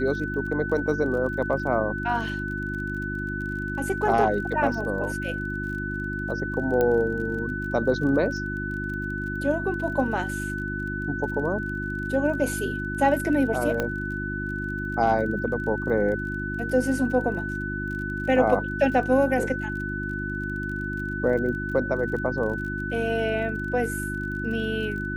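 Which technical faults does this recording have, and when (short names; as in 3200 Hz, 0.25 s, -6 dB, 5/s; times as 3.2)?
crackle 32/s -35 dBFS
hum 50 Hz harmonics 7 -32 dBFS
tone 1500 Hz -31 dBFS
6.81 pop -12 dBFS
13.8 pop -12 dBFS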